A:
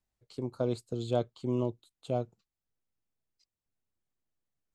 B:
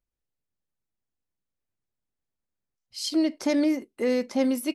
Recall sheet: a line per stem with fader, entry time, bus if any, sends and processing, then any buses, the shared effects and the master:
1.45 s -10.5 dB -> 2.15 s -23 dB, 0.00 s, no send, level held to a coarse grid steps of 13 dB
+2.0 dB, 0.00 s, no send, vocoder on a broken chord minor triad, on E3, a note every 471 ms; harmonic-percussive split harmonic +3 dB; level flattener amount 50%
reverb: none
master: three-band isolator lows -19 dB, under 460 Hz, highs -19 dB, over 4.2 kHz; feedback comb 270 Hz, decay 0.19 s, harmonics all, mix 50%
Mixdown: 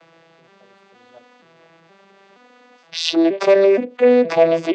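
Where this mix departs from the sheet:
stem B +2.0 dB -> +13.5 dB; master: missing feedback comb 270 Hz, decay 0.19 s, harmonics all, mix 50%

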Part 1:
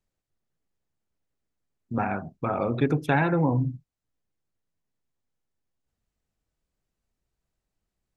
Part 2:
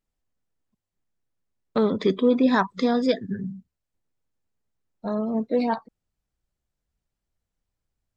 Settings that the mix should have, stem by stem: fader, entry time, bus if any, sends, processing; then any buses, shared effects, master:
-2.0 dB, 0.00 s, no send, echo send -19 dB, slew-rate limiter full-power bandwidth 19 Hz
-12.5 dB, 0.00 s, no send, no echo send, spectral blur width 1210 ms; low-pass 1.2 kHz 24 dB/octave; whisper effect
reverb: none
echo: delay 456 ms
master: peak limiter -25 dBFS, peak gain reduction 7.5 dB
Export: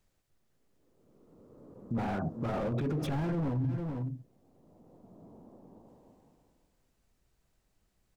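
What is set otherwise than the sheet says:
stem 1 -2.0 dB -> +8.0 dB; stem 2 -12.5 dB -> -21.0 dB

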